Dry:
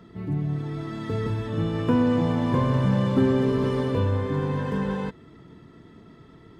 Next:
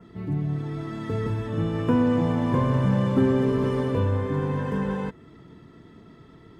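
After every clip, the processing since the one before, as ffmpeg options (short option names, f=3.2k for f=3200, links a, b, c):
-af "adynamicequalizer=threshold=0.00126:dfrequency=4100:dqfactor=1.8:tfrequency=4100:tqfactor=1.8:attack=5:release=100:ratio=0.375:range=3:mode=cutabove:tftype=bell"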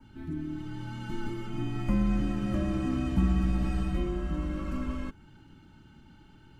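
-af "afreqshift=-450,equalizer=f=410:w=0.66:g=-12"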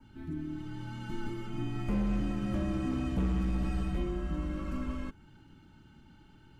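-af "asoftclip=type=hard:threshold=-22.5dB,volume=-2.5dB"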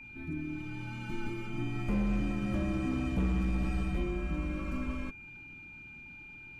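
-af "aeval=exprs='val(0)+0.00447*sin(2*PI*2400*n/s)':c=same"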